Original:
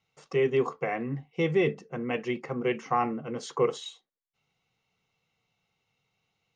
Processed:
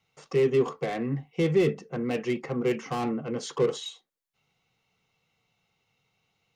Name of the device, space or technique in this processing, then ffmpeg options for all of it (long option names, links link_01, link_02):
one-band saturation: -filter_complex "[0:a]acrossover=split=510|4100[link_01][link_02][link_03];[link_02]asoftclip=type=tanh:threshold=-36.5dB[link_04];[link_01][link_04][link_03]amix=inputs=3:normalize=0,volume=3.5dB"